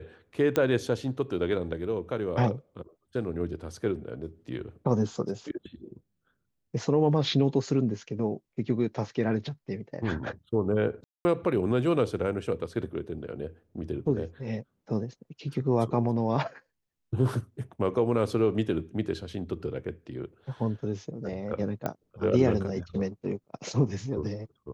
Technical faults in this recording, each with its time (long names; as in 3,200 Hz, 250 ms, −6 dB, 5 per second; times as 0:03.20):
0:00.56: click −12 dBFS
0:11.04–0:11.25: drop-out 210 ms
0:21.86: click −17 dBFS